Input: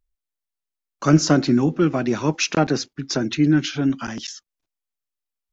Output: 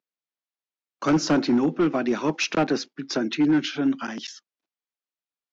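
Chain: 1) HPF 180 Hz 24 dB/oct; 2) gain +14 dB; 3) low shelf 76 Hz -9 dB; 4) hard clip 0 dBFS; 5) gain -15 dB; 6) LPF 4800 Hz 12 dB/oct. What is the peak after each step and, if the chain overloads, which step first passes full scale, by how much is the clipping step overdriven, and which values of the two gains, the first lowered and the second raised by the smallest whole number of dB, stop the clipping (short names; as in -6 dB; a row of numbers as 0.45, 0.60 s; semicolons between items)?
-5.0, +9.0, +8.5, 0.0, -15.0, -14.5 dBFS; step 2, 8.5 dB; step 2 +5 dB, step 5 -6 dB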